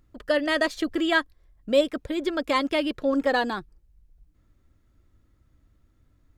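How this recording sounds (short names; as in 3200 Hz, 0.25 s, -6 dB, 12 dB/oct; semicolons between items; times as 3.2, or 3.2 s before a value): noise floor -65 dBFS; spectral tilt -1.0 dB/oct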